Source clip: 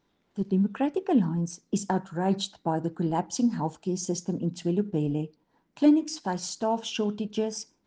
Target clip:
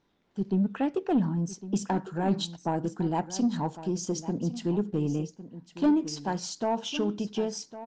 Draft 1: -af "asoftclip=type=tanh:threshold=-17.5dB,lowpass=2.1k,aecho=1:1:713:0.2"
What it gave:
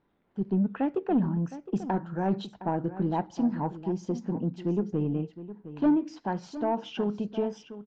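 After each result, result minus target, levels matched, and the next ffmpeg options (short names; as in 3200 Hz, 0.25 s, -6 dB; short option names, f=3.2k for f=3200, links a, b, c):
8000 Hz band -17.5 dB; echo 0.393 s early
-af "asoftclip=type=tanh:threshold=-17.5dB,lowpass=7.1k,aecho=1:1:713:0.2"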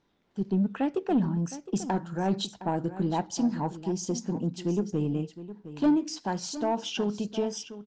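echo 0.393 s early
-af "asoftclip=type=tanh:threshold=-17.5dB,lowpass=7.1k,aecho=1:1:1106:0.2"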